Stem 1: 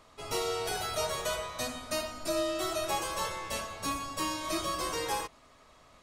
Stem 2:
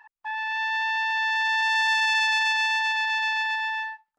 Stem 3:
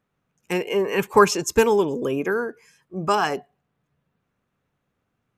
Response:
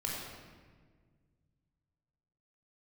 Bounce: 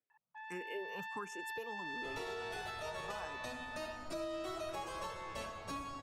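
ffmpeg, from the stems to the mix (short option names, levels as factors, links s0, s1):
-filter_complex "[0:a]lowpass=f=2700:p=1,adelay=1850,volume=0.631[s0];[1:a]equalizer=f=6700:w=0.79:g=-8.5,adelay=100,volume=0.126[s1];[2:a]highpass=150,asplit=2[s2][s3];[s3]afreqshift=1.4[s4];[s2][s4]amix=inputs=2:normalize=1,volume=0.119[s5];[s0][s1][s5]amix=inputs=3:normalize=0,alimiter=level_in=2.66:limit=0.0631:level=0:latency=1:release=288,volume=0.376"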